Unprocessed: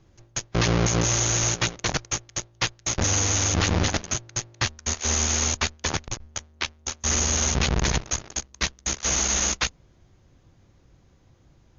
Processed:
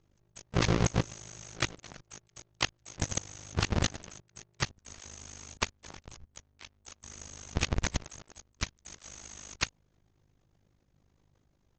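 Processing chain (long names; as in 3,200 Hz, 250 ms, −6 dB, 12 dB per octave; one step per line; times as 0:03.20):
output level in coarse steps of 22 dB
amplitude modulation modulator 51 Hz, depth 85%
pitch-shifted copies added +3 semitones −12 dB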